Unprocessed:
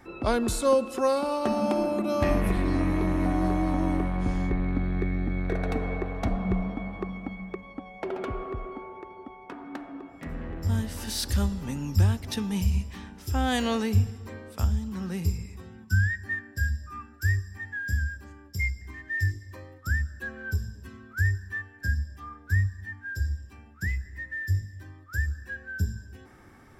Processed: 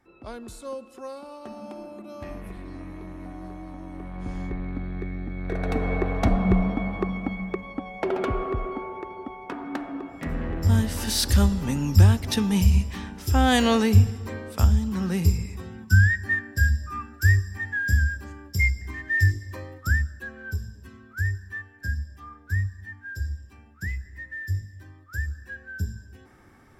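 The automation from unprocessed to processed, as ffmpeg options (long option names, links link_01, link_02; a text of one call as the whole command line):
ffmpeg -i in.wav -af "volume=6.5dB,afade=type=in:start_time=3.91:duration=0.48:silence=0.354813,afade=type=in:start_time=5.37:duration=0.73:silence=0.281838,afade=type=out:start_time=19.76:duration=0.49:silence=0.398107" out.wav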